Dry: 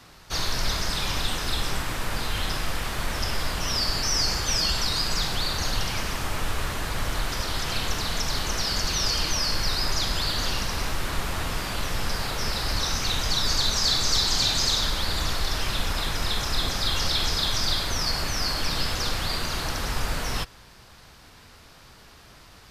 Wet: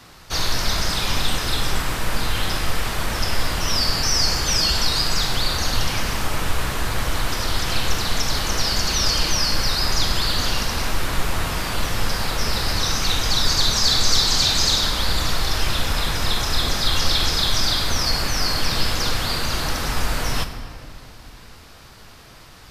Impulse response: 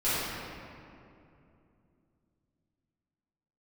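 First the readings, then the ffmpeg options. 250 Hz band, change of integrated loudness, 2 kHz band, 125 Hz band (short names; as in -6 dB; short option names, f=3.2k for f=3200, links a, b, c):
+5.0 dB, +4.5 dB, +4.5 dB, +5.0 dB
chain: -filter_complex "[0:a]asplit=2[a][b];[1:a]atrim=start_sample=2205,highshelf=f=8.1k:g=11[c];[b][c]afir=irnorm=-1:irlink=0,volume=-20.5dB[d];[a][d]amix=inputs=2:normalize=0,volume=3.5dB"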